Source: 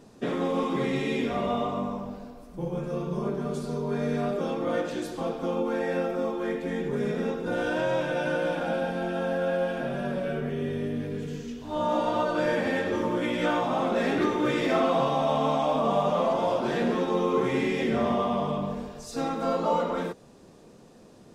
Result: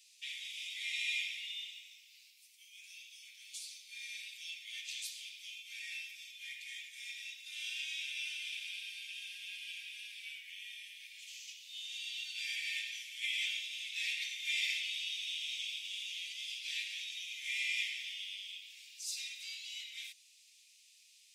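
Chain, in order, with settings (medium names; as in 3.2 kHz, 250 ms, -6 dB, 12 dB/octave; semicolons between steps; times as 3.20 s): steep high-pass 2.2 kHz 72 dB/octave; trim +3 dB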